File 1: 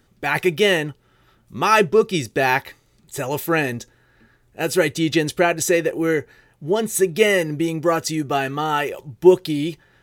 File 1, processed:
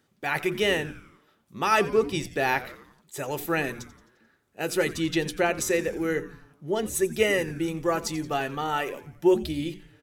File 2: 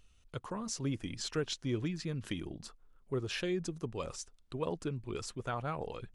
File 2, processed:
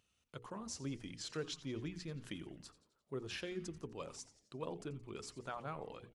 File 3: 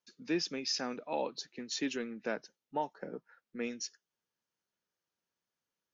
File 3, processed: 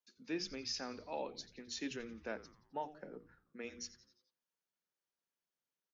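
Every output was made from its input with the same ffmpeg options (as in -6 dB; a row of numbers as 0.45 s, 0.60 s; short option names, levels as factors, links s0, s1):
-filter_complex "[0:a]highpass=120,bandreject=f=60:t=h:w=6,bandreject=f=120:t=h:w=6,bandreject=f=180:t=h:w=6,bandreject=f=240:t=h:w=6,bandreject=f=300:t=h:w=6,bandreject=f=360:t=h:w=6,bandreject=f=420:t=h:w=6,bandreject=f=480:t=h:w=6,asplit=2[s0][s1];[s1]asplit=5[s2][s3][s4][s5][s6];[s2]adelay=87,afreqshift=-150,volume=0.15[s7];[s3]adelay=174,afreqshift=-300,volume=0.0804[s8];[s4]adelay=261,afreqshift=-450,volume=0.0437[s9];[s5]adelay=348,afreqshift=-600,volume=0.0234[s10];[s6]adelay=435,afreqshift=-750,volume=0.0127[s11];[s7][s8][s9][s10][s11]amix=inputs=5:normalize=0[s12];[s0][s12]amix=inputs=2:normalize=0,volume=0.473"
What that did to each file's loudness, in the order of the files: -7.0 LU, -7.5 LU, -6.5 LU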